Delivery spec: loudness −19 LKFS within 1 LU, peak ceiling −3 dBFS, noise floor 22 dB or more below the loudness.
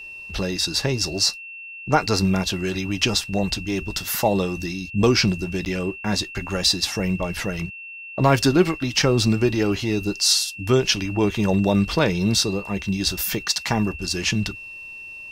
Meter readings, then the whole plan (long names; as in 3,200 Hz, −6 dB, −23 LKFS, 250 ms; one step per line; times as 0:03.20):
number of dropouts 1; longest dropout 9.5 ms; interfering tone 2,700 Hz; level of the tone −35 dBFS; integrated loudness −21.5 LKFS; sample peak −3.0 dBFS; target loudness −19.0 LKFS
→ repair the gap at 0:05.65, 9.5 ms
notch filter 2,700 Hz, Q 30
level +2.5 dB
brickwall limiter −3 dBFS